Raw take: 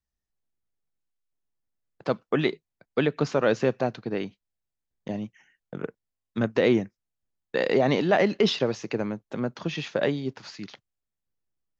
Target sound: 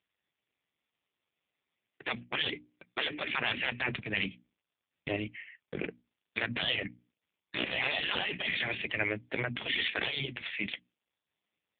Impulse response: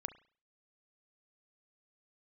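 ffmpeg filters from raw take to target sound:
-af "highshelf=f=1600:t=q:w=3:g=9.5,bandreject=f=60:t=h:w=6,bandreject=f=120:t=h:w=6,bandreject=f=180:t=h:w=6,bandreject=f=240:t=h:w=6,bandreject=f=300:t=h:w=6,afftfilt=real='re*lt(hypot(re,im),0.178)':imag='im*lt(hypot(re,im),0.178)':win_size=1024:overlap=0.75,adynamicequalizer=threshold=0.00398:dfrequency=300:dqfactor=1.6:tfrequency=300:tqfactor=1.6:attack=5:release=100:ratio=0.375:range=2:mode=cutabove:tftype=bell,asoftclip=type=hard:threshold=0.075,volume=1.58" -ar 8000 -c:a libopencore_amrnb -b:a 5150

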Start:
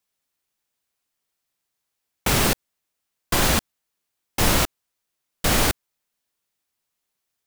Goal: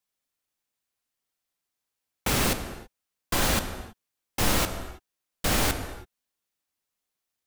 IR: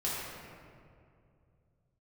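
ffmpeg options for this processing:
-filter_complex "[0:a]asplit=2[s0][s1];[1:a]atrim=start_sample=2205,afade=t=out:st=0.28:d=0.01,atrim=end_sample=12789,asetrate=30429,aresample=44100[s2];[s1][s2]afir=irnorm=-1:irlink=0,volume=0.2[s3];[s0][s3]amix=inputs=2:normalize=0,volume=0.473"

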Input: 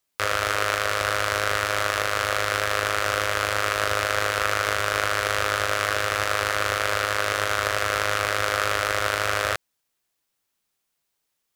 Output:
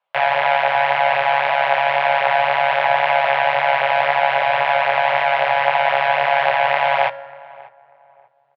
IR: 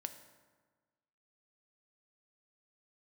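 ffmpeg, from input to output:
-filter_complex "[0:a]lowshelf=f=330:t=q:w=3:g=-9.5,acontrast=59,flanger=delay=17.5:depth=3.6:speed=1.4,asetrate=59535,aresample=44100,highpass=f=120:w=0.5412,highpass=f=120:w=1.3066,equalizer=f=240:t=q:w=4:g=-10,equalizer=f=1000:t=q:w=4:g=5,equalizer=f=1800:t=q:w=4:g=-7,lowpass=f=2900:w=0.5412,lowpass=f=2900:w=1.3066,asplit=2[s0][s1];[s1]adelay=591,lowpass=f=1100:p=1,volume=0.1,asplit=2[s2][s3];[s3]adelay=591,lowpass=f=1100:p=1,volume=0.34,asplit=2[s4][s5];[s5]adelay=591,lowpass=f=1100:p=1,volume=0.34[s6];[s0][s2][s4][s6]amix=inputs=4:normalize=0,asplit=2[s7][s8];[1:a]atrim=start_sample=2205,lowpass=4500[s9];[s8][s9]afir=irnorm=-1:irlink=0,volume=1[s10];[s7][s10]amix=inputs=2:normalize=0"

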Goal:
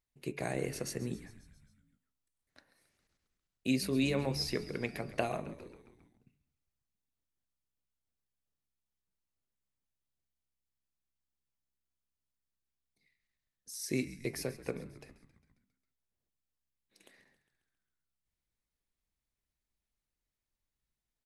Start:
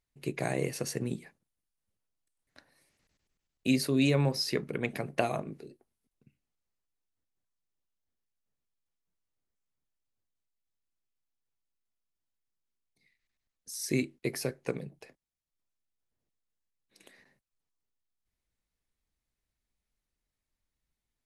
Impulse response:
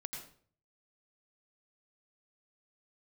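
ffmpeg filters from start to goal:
-filter_complex "[0:a]bandreject=f=142.4:t=h:w=4,bandreject=f=284.8:t=h:w=4,bandreject=f=427.2:t=h:w=4,bandreject=f=569.6:t=h:w=4,bandreject=f=712:t=h:w=4,bandreject=f=854.4:t=h:w=4,bandreject=f=996.8:t=h:w=4,bandreject=f=1139.2:t=h:w=4,bandreject=f=1281.6:t=h:w=4,bandreject=f=1424:t=h:w=4,bandreject=f=1566.4:t=h:w=4,bandreject=f=1708.8:t=h:w=4,bandreject=f=1851.2:t=h:w=4,bandreject=f=1993.6:t=h:w=4,bandreject=f=2136:t=h:w=4,bandreject=f=2278.4:t=h:w=4,bandreject=f=2420.8:t=h:w=4,bandreject=f=2563.2:t=h:w=4,bandreject=f=2705.6:t=h:w=4,bandreject=f=2848:t=h:w=4,bandreject=f=2990.4:t=h:w=4,asplit=7[s0][s1][s2][s3][s4][s5][s6];[s1]adelay=135,afreqshift=-67,volume=0.158[s7];[s2]adelay=270,afreqshift=-134,volume=0.1[s8];[s3]adelay=405,afreqshift=-201,volume=0.0631[s9];[s4]adelay=540,afreqshift=-268,volume=0.0398[s10];[s5]adelay=675,afreqshift=-335,volume=0.0248[s11];[s6]adelay=810,afreqshift=-402,volume=0.0157[s12];[s0][s7][s8][s9][s10][s11][s12]amix=inputs=7:normalize=0,volume=0.631"

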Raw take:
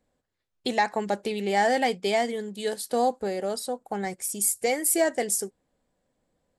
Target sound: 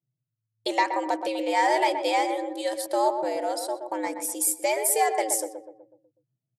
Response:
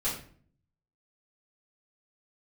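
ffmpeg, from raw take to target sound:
-filter_complex "[0:a]anlmdn=0.00631,asplit=2[s0][s1];[s1]adelay=124,lowpass=f=1100:p=1,volume=0.501,asplit=2[s2][s3];[s3]adelay=124,lowpass=f=1100:p=1,volume=0.52,asplit=2[s4][s5];[s5]adelay=124,lowpass=f=1100:p=1,volume=0.52,asplit=2[s6][s7];[s7]adelay=124,lowpass=f=1100:p=1,volume=0.52,asplit=2[s8][s9];[s9]adelay=124,lowpass=f=1100:p=1,volume=0.52,asplit=2[s10][s11];[s11]adelay=124,lowpass=f=1100:p=1,volume=0.52[s12];[s0][s2][s4][s6][s8][s10][s12]amix=inputs=7:normalize=0,afreqshift=110"

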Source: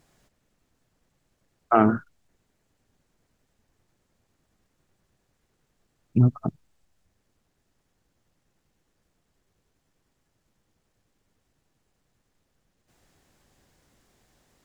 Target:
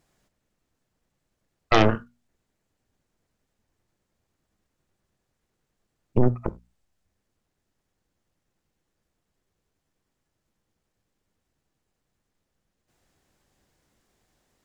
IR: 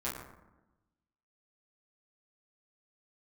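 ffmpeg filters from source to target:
-filter_complex "[0:a]aeval=exprs='0.631*(cos(1*acos(clip(val(0)/0.631,-1,1)))-cos(1*PI/2))+0.0398*(cos(3*acos(clip(val(0)/0.631,-1,1)))-cos(3*PI/2))+0.0355*(cos(5*acos(clip(val(0)/0.631,-1,1)))-cos(5*PI/2))+0.282*(cos(6*acos(clip(val(0)/0.631,-1,1)))-cos(6*PI/2))+0.02*(cos(7*acos(clip(val(0)/0.631,-1,1)))-cos(7*PI/2))':c=same,bandreject=f=60:t=h:w=6,bandreject=f=120:t=h:w=6,bandreject=f=180:t=h:w=6,bandreject=f=240:t=h:w=6,asplit=2[s0][s1];[1:a]atrim=start_sample=2205,atrim=end_sample=4410[s2];[s1][s2]afir=irnorm=-1:irlink=0,volume=0.112[s3];[s0][s3]amix=inputs=2:normalize=0,volume=0.596"

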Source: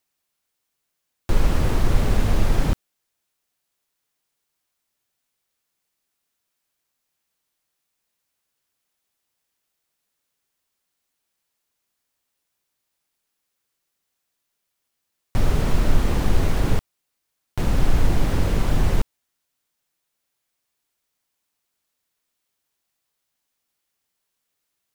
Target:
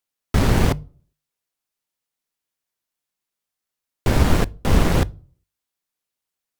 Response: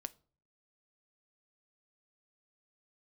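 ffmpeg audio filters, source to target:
-filter_complex "[0:a]aeval=exprs='0.631*(cos(1*acos(clip(val(0)/0.631,-1,1)))-cos(1*PI/2))+0.0224*(cos(7*acos(clip(val(0)/0.631,-1,1)))-cos(7*PI/2))':c=same,asetrate=166698,aresample=44100,bandreject=f=50:t=h:w=6,bandreject=f=100:t=h:w=6,bandreject=f=150:t=h:w=6,asplit=2[s0][s1];[1:a]atrim=start_sample=2205[s2];[s1][s2]afir=irnorm=-1:irlink=0,volume=1.33[s3];[s0][s3]amix=inputs=2:normalize=0,volume=0.631"

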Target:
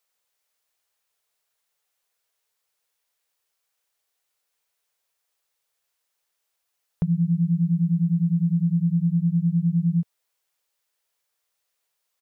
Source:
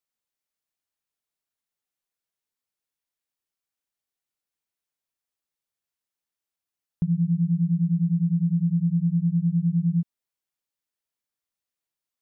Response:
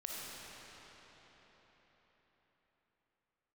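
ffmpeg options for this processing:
-af "firequalizer=gain_entry='entry(110,0);entry(280,-7);entry(440,8)':delay=0.05:min_phase=1,volume=1.5"

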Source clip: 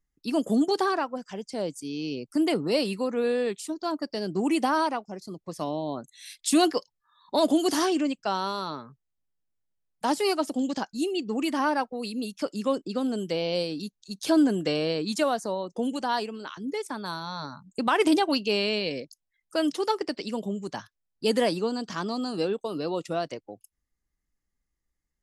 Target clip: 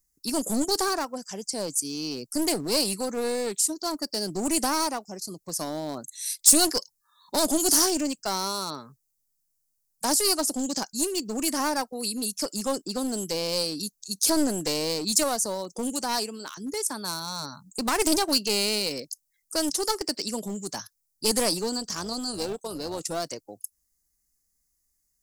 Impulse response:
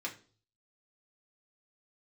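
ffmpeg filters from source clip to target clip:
-filter_complex "[0:a]aeval=exprs='clip(val(0),-1,0.0422)':c=same,asplit=3[s0][s1][s2];[s0]afade=t=out:st=21.77:d=0.02[s3];[s1]tremolo=f=260:d=0.462,afade=t=in:st=21.77:d=0.02,afade=t=out:st=22.99:d=0.02[s4];[s2]afade=t=in:st=22.99:d=0.02[s5];[s3][s4][s5]amix=inputs=3:normalize=0,aexciter=amount=4.2:drive=9:freq=4700,volume=0.891"

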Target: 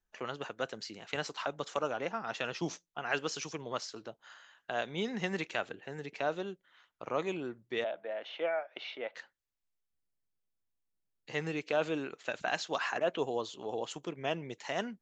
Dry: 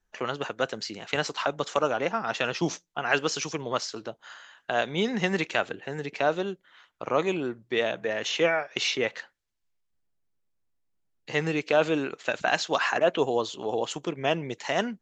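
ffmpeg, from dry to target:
-filter_complex "[0:a]asettb=1/sr,asplit=3[s0][s1][s2];[s0]atrim=end=7.844[s3];[s1]atrim=start=7.84:end=9.15,asetpts=PTS-STARTPTS,afade=t=in:d=0.004:c=qsin,afade=t=out:st=1.306:d=0.004:c=qsin,highpass=410,equalizer=f=420:t=q:w=4:g=-6,equalizer=f=630:t=q:w=4:g=6,equalizer=f=1100:t=q:w=4:g=-5,equalizer=f=1800:t=q:w=4:g=-7,equalizer=f=2600:t=q:w=4:g=-7,lowpass=f=3100:w=0.5412,lowpass=f=3100:w=1.3066[s4];[s2]atrim=start=9.146[s5];[s3][s4]acrossfade=d=0.004:c1=hsin:c2=qsin[s6];[s6][s5]acrossfade=d=0.004:c1=qsin:c2=hsin,volume=0.376"

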